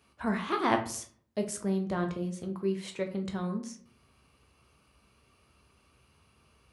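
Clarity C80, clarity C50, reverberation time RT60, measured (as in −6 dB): 15.5 dB, 11.0 dB, 0.55 s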